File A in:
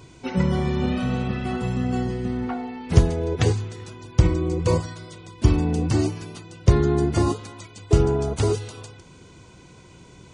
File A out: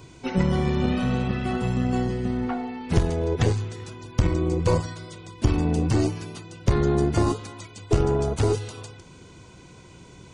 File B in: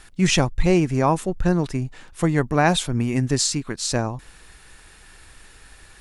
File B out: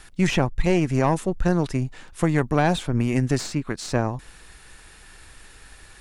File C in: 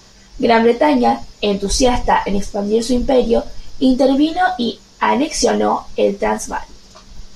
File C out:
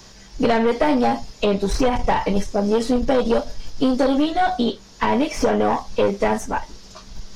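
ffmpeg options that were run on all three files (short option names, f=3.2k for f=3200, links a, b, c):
-filter_complex "[0:a]aeval=exprs='(tanh(3.16*val(0)+0.5)-tanh(0.5))/3.16':c=same,acrossover=split=720|2700[a][b][c];[a]acompressor=threshold=-18dB:ratio=4[d];[b]acompressor=threshold=-26dB:ratio=4[e];[c]acompressor=threshold=-39dB:ratio=4[f];[d][e][f]amix=inputs=3:normalize=0,volume=2.5dB"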